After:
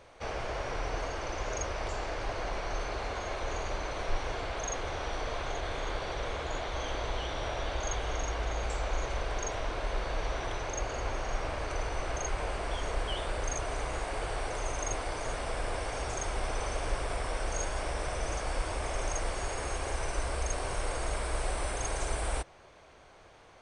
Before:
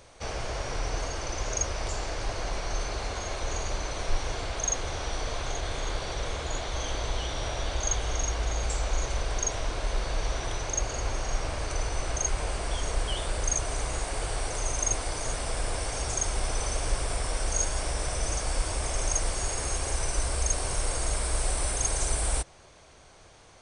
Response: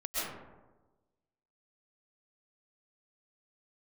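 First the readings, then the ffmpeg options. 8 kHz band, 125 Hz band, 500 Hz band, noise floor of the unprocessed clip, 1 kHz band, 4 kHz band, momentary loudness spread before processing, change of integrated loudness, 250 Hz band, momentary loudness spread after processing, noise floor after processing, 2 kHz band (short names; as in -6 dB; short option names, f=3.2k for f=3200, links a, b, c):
-10.5 dB, -5.0 dB, -0.5 dB, -53 dBFS, 0.0 dB, -5.5 dB, 5 LU, -4.5 dB, -2.0 dB, 2 LU, -56 dBFS, -1.0 dB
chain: -af "bass=f=250:g=-5,treble=f=4k:g=-12"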